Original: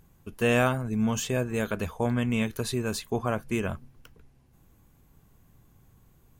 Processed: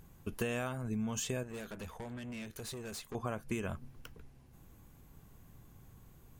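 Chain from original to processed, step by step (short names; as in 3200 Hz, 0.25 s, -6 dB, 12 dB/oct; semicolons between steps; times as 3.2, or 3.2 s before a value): dynamic EQ 7500 Hz, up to +4 dB, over -50 dBFS, Q 0.85; compressor 16:1, threshold -34 dBFS, peak gain reduction 16.5 dB; 1.43–3.15 tube stage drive 41 dB, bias 0.65; gain +1.5 dB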